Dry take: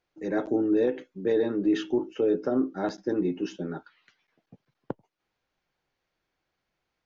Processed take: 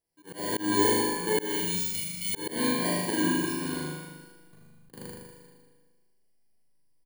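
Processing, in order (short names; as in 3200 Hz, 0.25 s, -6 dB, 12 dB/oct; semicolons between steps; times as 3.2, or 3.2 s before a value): FFT order left unsorted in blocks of 32 samples; bell 270 Hz -3.5 dB 0.23 oct; notches 50/100/150/200/250/300/350 Hz; Schroeder reverb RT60 1.5 s, combs from 33 ms, DRR 0.5 dB; spectral delete 1.51–2.34, 230–2000 Hz; in parallel at -7.5 dB: backlash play -31.5 dBFS; on the sum: pitch shift -1 st; flutter echo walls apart 6.7 m, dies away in 1.1 s; auto swell 0.186 s; gain -7 dB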